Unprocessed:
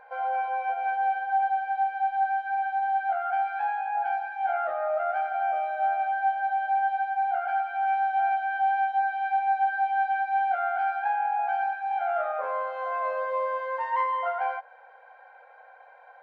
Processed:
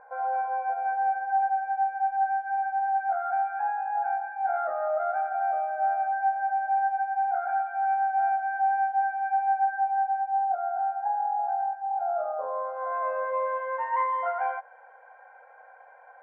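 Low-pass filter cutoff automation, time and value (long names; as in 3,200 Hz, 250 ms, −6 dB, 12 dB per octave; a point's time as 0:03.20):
low-pass filter 24 dB per octave
0:09.53 1,600 Hz
0:10.36 1,000 Hz
0:12.53 1,000 Hz
0:12.84 1,500 Hz
0:13.38 2,200 Hz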